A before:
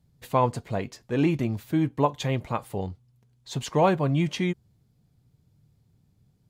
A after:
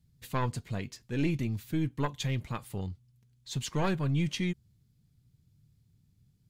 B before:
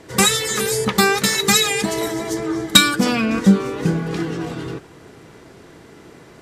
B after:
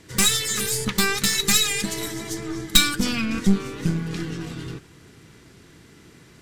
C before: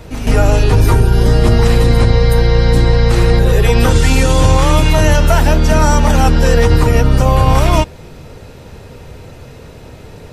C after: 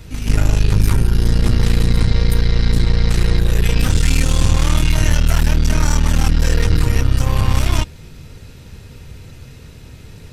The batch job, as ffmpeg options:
-af "acontrast=59,aeval=exprs='1*(cos(1*acos(clip(val(0)/1,-1,1)))-cos(1*PI/2))+0.447*(cos(2*acos(clip(val(0)/1,-1,1)))-cos(2*PI/2))':c=same,equalizer=f=650:t=o:w=2.1:g=-13,volume=0.447"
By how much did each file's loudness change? -6.5 LU, -4.5 LU, -5.5 LU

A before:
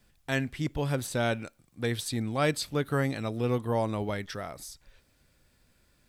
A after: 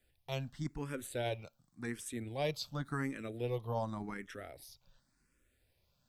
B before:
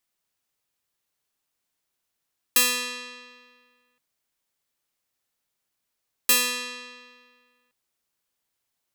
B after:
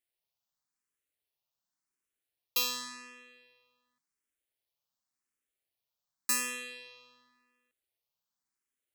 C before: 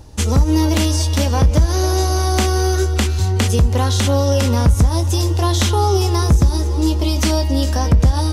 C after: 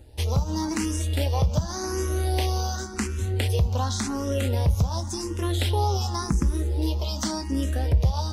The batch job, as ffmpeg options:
-filter_complex "[0:a]tremolo=f=130:d=0.333,asplit=2[s0][s1];[s1]afreqshift=0.9[s2];[s0][s2]amix=inputs=2:normalize=1,volume=0.562"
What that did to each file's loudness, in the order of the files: -9.5 LU, -9.5 LU, -9.5 LU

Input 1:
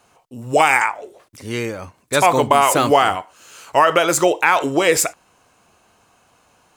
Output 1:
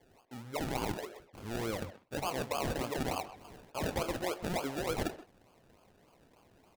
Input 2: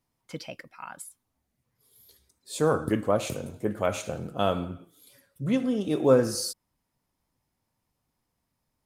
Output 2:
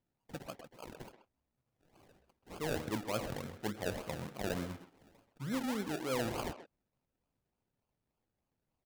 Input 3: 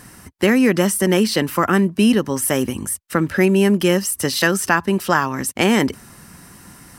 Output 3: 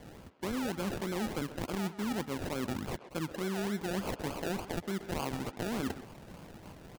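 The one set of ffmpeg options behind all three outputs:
-filter_complex "[0:a]areverse,acompressor=threshold=0.0562:ratio=8,areverse,acrusher=samples=33:mix=1:aa=0.000001:lfo=1:lforange=19.8:lforate=3.4,asplit=2[s0][s1];[s1]adelay=130,highpass=300,lowpass=3400,asoftclip=type=hard:threshold=0.0501,volume=0.316[s2];[s0][s2]amix=inputs=2:normalize=0,volume=0.447"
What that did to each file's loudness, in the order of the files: -20.5 LU, -12.5 LU, -18.5 LU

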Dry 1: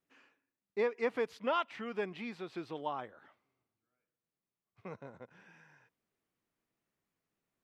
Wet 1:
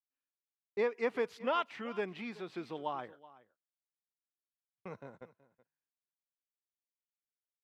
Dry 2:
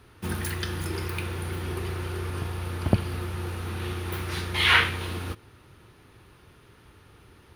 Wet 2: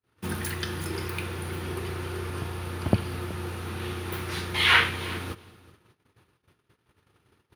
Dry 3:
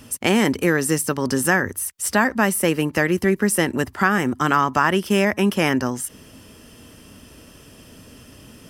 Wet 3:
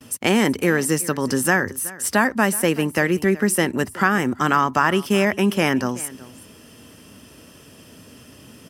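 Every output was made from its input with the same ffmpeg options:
-filter_complex "[0:a]highpass=88,agate=range=0.0141:threshold=0.00251:ratio=16:detection=peak,asplit=2[s0][s1];[s1]aecho=0:1:375:0.106[s2];[s0][s2]amix=inputs=2:normalize=0"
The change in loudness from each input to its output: +0.5 LU, -0.5 LU, 0.0 LU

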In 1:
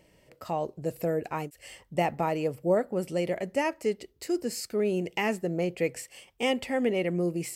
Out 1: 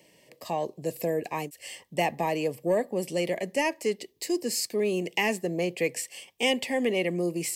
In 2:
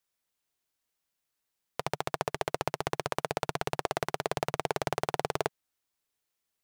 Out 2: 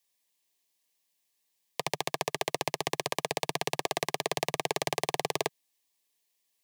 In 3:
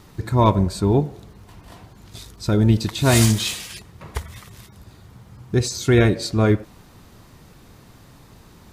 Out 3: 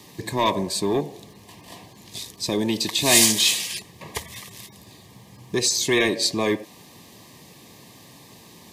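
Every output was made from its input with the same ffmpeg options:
-filter_complex "[0:a]highpass=160,acrossover=split=240|1400|2200[s0][s1][s2][s3];[s0]acompressor=threshold=0.0178:ratio=6[s4];[s1]asoftclip=type=tanh:threshold=0.106[s5];[s3]acontrast=38[s6];[s4][s5][s2][s6]amix=inputs=4:normalize=0,asuperstop=centerf=1400:order=8:qfactor=3.6,volume=1.19"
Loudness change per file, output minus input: +1.0 LU, +1.5 LU, -1.5 LU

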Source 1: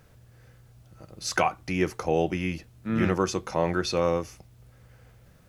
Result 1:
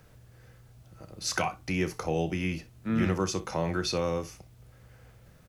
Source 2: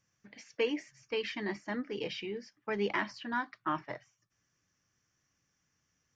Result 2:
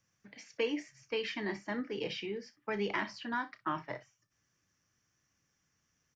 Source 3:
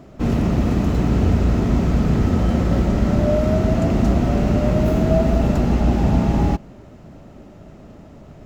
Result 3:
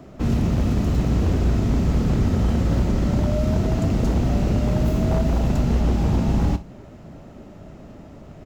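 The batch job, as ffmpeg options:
-filter_complex "[0:a]acrossover=split=210|3000[s0][s1][s2];[s1]acompressor=threshold=0.0251:ratio=2[s3];[s0][s3][s2]amix=inputs=3:normalize=0,aeval=exprs='0.224*(abs(mod(val(0)/0.224+3,4)-2)-1)':c=same,aecho=1:1:31|61:0.211|0.133"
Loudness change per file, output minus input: -3.0 LU, -1.0 LU, -3.0 LU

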